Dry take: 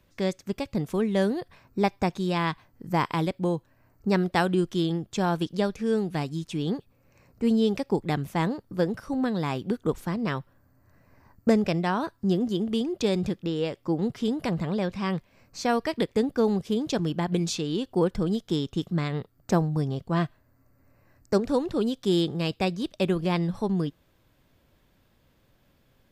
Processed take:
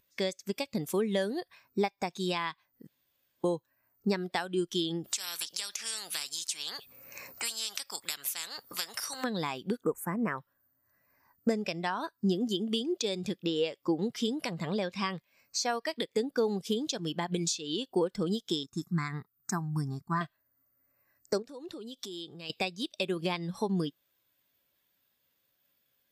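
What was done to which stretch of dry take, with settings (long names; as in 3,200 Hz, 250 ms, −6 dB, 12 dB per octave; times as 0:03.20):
0:02.87–0:03.44: fill with room tone
0:05.04–0:09.24: every bin compressed towards the loudest bin 4 to 1
0:09.85–0:10.38: Butterworth band-reject 4,000 Hz, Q 0.79
0:18.63–0:20.21: phaser with its sweep stopped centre 1,300 Hz, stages 4
0:21.42–0:22.50: downward compressor 12 to 1, threshold −36 dBFS
whole clip: spectral tilt +4 dB per octave; downward compressor 6 to 1, threshold −33 dBFS; every bin expanded away from the loudest bin 1.5 to 1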